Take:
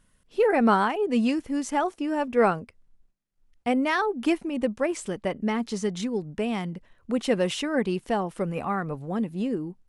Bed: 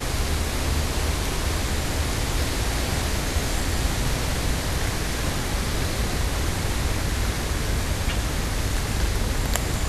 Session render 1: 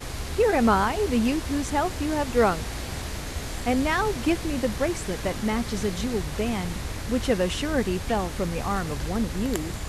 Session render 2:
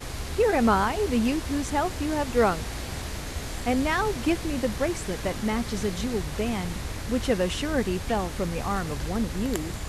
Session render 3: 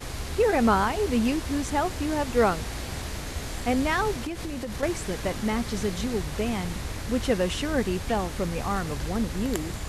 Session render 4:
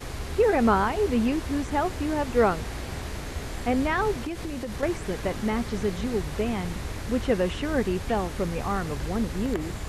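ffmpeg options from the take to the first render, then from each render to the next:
-filter_complex "[1:a]volume=0.398[s0];[0:a][s0]amix=inputs=2:normalize=0"
-af "volume=0.891"
-filter_complex "[0:a]asettb=1/sr,asplit=3[s0][s1][s2];[s0]atrim=end=4.144[s3];[s1]atrim=start=4.14:end=4.83,asetpts=PTS-STARTPTS,afade=t=in:d=0.004:c=qsin,afade=t=out:st=0.686:d=0.004:c=qsin,acompressor=threshold=0.0398:ratio=12:attack=3.2:release=140:knee=1:detection=peak[s4];[s2]atrim=start=4.826[s5];[s3][s4]acrossfade=d=0.004:c1=hsin:c2=qsin[s6];[s6][s5]acrossfade=d=0.004:c1=qsin:c2=hsin"
-filter_complex "[0:a]acrossover=split=2800[s0][s1];[s1]acompressor=threshold=0.00708:ratio=4:attack=1:release=60[s2];[s0][s2]amix=inputs=2:normalize=0,equalizer=f=400:w=4.3:g=2.5"

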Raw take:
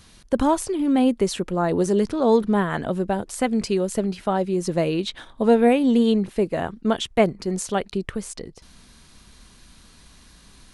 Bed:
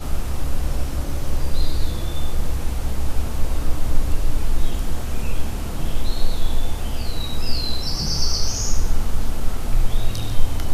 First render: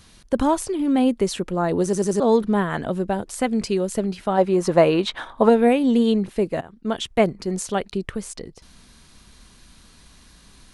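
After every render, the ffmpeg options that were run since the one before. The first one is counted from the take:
-filter_complex "[0:a]asplit=3[s0][s1][s2];[s0]afade=t=out:st=4.37:d=0.02[s3];[s1]equalizer=f=1000:t=o:w=2.2:g=12.5,afade=t=in:st=4.37:d=0.02,afade=t=out:st=5.48:d=0.02[s4];[s2]afade=t=in:st=5.48:d=0.02[s5];[s3][s4][s5]amix=inputs=3:normalize=0,asplit=6[s6][s7][s8][s9][s10][s11];[s6]atrim=end=1.932[s12];[s7]atrim=start=1.838:end=1.932[s13];[s8]atrim=start=1.838:end=1.932[s14];[s9]atrim=start=1.838:end=1.932[s15];[s10]atrim=start=2.198:end=6.61,asetpts=PTS-STARTPTS,afade=t=out:st=4.408:d=0.004:c=hsin:silence=0.105925[s16];[s11]atrim=start=6.61,asetpts=PTS-STARTPTS,afade=t=in:d=0.46:silence=0.105925[s17];[s12][s13]acrossfade=d=0.004:c1=hsin:c2=hsin[s18];[s18][s14]acrossfade=d=0.004:c1=hsin:c2=hsin[s19];[s19][s15]acrossfade=d=0.004:c1=hsin:c2=hsin[s20];[s16][s17]concat=n=2:v=0:a=1[s21];[s20][s21]acrossfade=d=0.004:c1=hsin:c2=hsin"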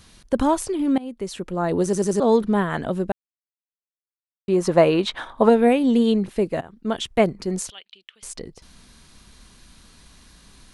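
-filter_complex "[0:a]asettb=1/sr,asplit=3[s0][s1][s2];[s0]atrim=end=7.704[s3];[s1]atrim=start=7.7:end=8.23,asetpts=PTS-STARTPTS,afade=t=in:d=0.004:c=qsin,afade=t=out:st=0.526:d=0.004:c=qsin,bandpass=f=3100:t=q:w=5[s4];[s2]atrim=start=8.226[s5];[s3][s4]acrossfade=d=0.004:c1=hsin:c2=qsin[s6];[s6][s5]acrossfade=d=0.004:c1=qsin:c2=hsin,asplit=4[s7][s8][s9][s10];[s7]atrim=end=0.98,asetpts=PTS-STARTPTS,afade=t=out:st=0.976:d=0.004:c=hsin:silence=0.0794328[s11];[s8]atrim=start=0.98:end=3.12,asetpts=PTS-STARTPTS,afade=t=in:d=0.77:silence=0.0794328,afade=t=out:st=2.136:d=0.004:c=hsin[s12];[s9]atrim=start=3.12:end=4.48,asetpts=PTS-STARTPTS,volume=0[s13];[s10]atrim=start=4.48,asetpts=PTS-STARTPTS,afade=t=in:d=0.004:c=hsin[s14];[s11][s12][s13][s14]concat=n=4:v=0:a=1"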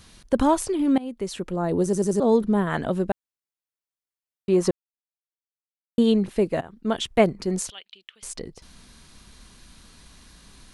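-filter_complex "[0:a]asettb=1/sr,asplit=3[s0][s1][s2];[s0]atrim=end=1.564[s3];[s1]atrim=start=1.56:end=2.67,asetpts=PTS-STARTPTS,afade=t=in:d=0.004:c=qsin,afade=t=out:st=1.106:d=0.004:c=qsin,equalizer=f=2300:w=0.35:g=-7[s4];[s2]atrim=start=2.666[s5];[s3][s4]acrossfade=d=0.004:c1=hsin:c2=qsin[s6];[s6][s5]acrossfade=d=0.004:c1=qsin:c2=hsin,asplit=3[s7][s8][s9];[s7]atrim=end=4.71,asetpts=PTS-STARTPTS,afade=t=out:st=4.706:d=0.004:c=hsin[s10];[s8]atrim=start=4.71:end=5.98,asetpts=PTS-STARTPTS,volume=0[s11];[s9]atrim=start=5.98,asetpts=PTS-STARTPTS,afade=t=in:d=0.004:c=hsin[s12];[s10][s11][s12]concat=n=3:v=0:a=1"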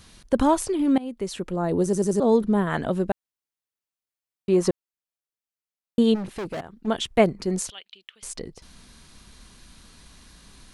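-filter_complex "[0:a]asplit=3[s0][s1][s2];[s0]afade=t=out:st=6.14:d=0.02[s3];[s1]volume=26.6,asoftclip=hard,volume=0.0376,afade=t=in:st=6.14:d=0.02,afade=t=out:st=6.86:d=0.02[s4];[s2]afade=t=in:st=6.86:d=0.02[s5];[s3][s4][s5]amix=inputs=3:normalize=0"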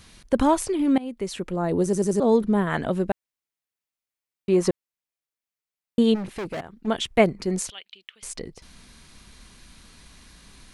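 -af "equalizer=f=2200:t=o:w=0.56:g=3.5"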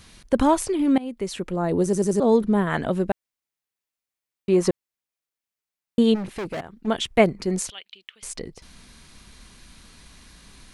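-af "volume=1.12"

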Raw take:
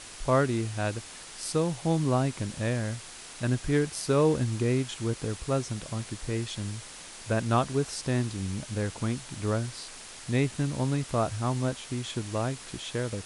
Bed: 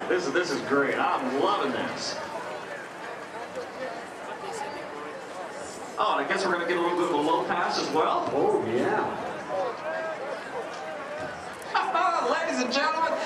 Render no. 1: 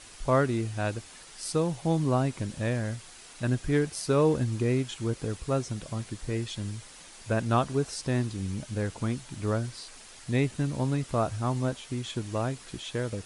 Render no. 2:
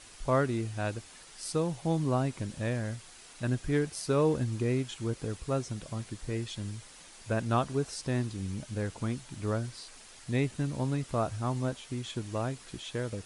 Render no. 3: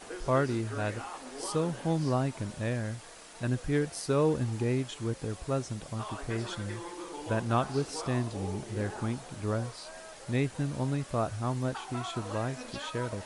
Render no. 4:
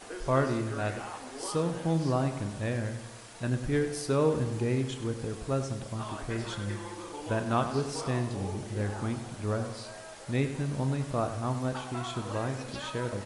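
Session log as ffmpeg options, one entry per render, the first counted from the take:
-af "afftdn=nr=6:nf=-45"
-af "volume=0.708"
-filter_complex "[1:a]volume=0.15[s0];[0:a][s0]amix=inputs=2:normalize=0"
-filter_complex "[0:a]asplit=2[s0][s1];[s1]adelay=30,volume=0.251[s2];[s0][s2]amix=inputs=2:normalize=0,asplit=2[s3][s4];[s4]adelay=98,lowpass=f=3900:p=1,volume=0.316,asplit=2[s5][s6];[s6]adelay=98,lowpass=f=3900:p=1,volume=0.55,asplit=2[s7][s8];[s8]adelay=98,lowpass=f=3900:p=1,volume=0.55,asplit=2[s9][s10];[s10]adelay=98,lowpass=f=3900:p=1,volume=0.55,asplit=2[s11][s12];[s12]adelay=98,lowpass=f=3900:p=1,volume=0.55,asplit=2[s13][s14];[s14]adelay=98,lowpass=f=3900:p=1,volume=0.55[s15];[s3][s5][s7][s9][s11][s13][s15]amix=inputs=7:normalize=0"

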